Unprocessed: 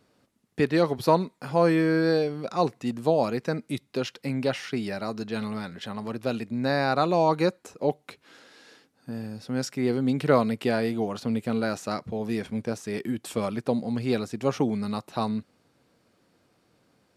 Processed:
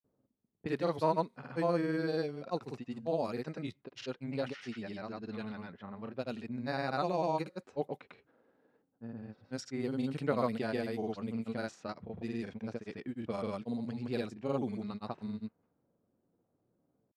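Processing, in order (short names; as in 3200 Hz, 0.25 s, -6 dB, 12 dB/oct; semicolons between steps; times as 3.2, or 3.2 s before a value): low-pass opened by the level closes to 650 Hz, open at -22 dBFS; grains, pitch spread up and down by 0 st; gain -9 dB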